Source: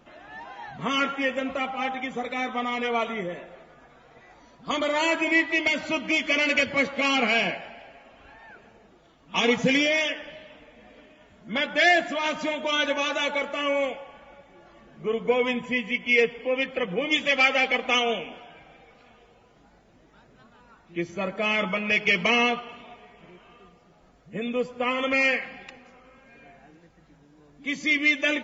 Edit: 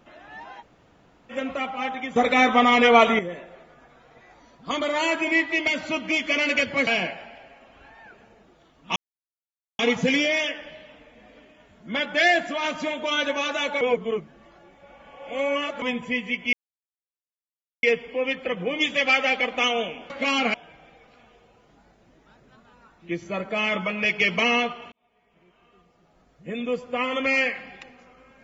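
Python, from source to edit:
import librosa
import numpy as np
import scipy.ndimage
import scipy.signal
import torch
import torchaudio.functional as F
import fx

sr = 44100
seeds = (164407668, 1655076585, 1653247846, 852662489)

y = fx.edit(x, sr, fx.room_tone_fill(start_s=0.61, length_s=0.7, crossfade_s=0.04),
    fx.clip_gain(start_s=2.16, length_s=1.03, db=11.0),
    fx.move(start_s=6.87, length_s=0.44, to_s=18.41),
    fx.insert_silence(at_s=9.4, length_s=0.83),
    fx.reverse_span(start_s=13.42, length_s=2.01),
    fx.insert_silence(at_s=16.14, length_s=1.3),
    fx.fade_in_span(start_s=22.79, length_s=1.73), tone=tone)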